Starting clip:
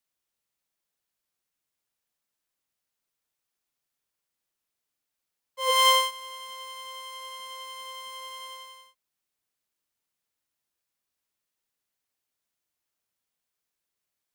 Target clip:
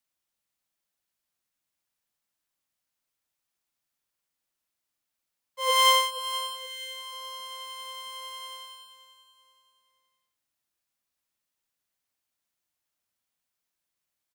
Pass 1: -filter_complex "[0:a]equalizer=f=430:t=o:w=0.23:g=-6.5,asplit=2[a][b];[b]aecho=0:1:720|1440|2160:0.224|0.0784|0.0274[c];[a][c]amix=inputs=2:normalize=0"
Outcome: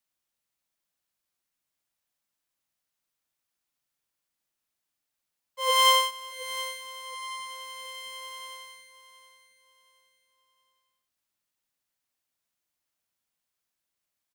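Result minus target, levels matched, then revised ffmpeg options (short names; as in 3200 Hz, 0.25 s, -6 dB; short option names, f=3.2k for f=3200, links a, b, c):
echo 0.241 s late
-filter_complex "[0:a]equalizer=f=430:t=o:w=0.23:g=-6.5,asplit=2[a][b];[b]aecho=0:1:479|958|1437:0.224|0.0784|0.0274[c];[a][c]amix=inputs=2:normalize=0"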